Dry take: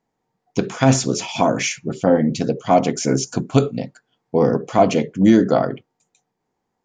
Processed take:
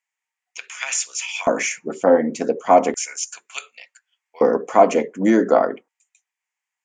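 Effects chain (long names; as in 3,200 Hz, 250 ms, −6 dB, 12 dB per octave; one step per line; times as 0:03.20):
octave-band graphic EQ 125/250/500/1,000/2,000/4,000/8,000 Hz −9/−5/+6/+8/+8/−9/+11 dB
auto-filter high-pass square 0.34 Hz 240–2,700 Hz
level −6 dB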